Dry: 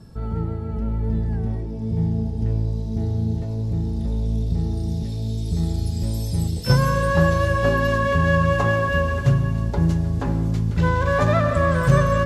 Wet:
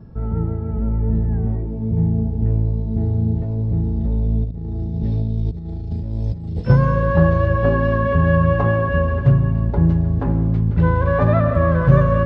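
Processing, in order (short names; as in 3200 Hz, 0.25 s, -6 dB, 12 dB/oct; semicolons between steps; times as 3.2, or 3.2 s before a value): 4.44–6.62 negative-ratio compressor -26 dBFS, ratio -0.5; tape spacing loss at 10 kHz 42 dB; gain +4.5 dB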